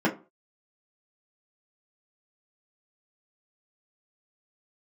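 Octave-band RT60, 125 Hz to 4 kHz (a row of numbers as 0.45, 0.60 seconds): 0.40, 0.35, 0.35, 0.35, 0.25, 0.20 seconds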